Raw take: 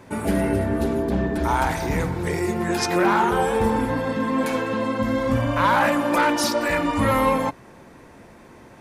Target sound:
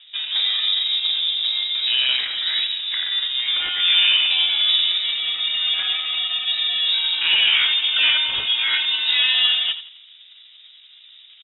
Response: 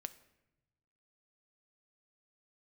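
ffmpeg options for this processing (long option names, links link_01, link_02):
-filter_complex "[0:a]equalizer=frequency=150:width_type=o:width=0.4:gain=-15,atempo=0.77,asplit=2[link_01][link_02];[link_02]adelay=85,lowpass=frequency=1900:poles=1,volume=-10.5dB,asplit=2[link_03][link_04];[link_04]adelay=85,lowpass=frequency=1900:poles=1,volume=0.42,asplit=2[link_05][link_06];[link_06]adelay=85,lowpass=frequency=1900:poles=1,volume=0.42,asplit=2[link_07][link_08];[link_08]adelay=85,lowpass=frequency=1900:poles=1,volume=0.42[link_09];[link_03][link_05][link_07][link_09]amix=inputs=4:normalize=0[link_10];[link_01][link_10]amix=inputs=2:normalize=0,adynamicsmooth=sensitivity=7:basefreq=990,lowpass=frequency=3300:width_type=q:width=0.5098,lowpass=frequency=3300:width_type=q:width=0.6013,lowpass=frequency=3300:width_type=q:width=0.9,lowpass=frequency=3300:width_type=q:width=2.563,afreqshift=-3900,volume=1.5dB"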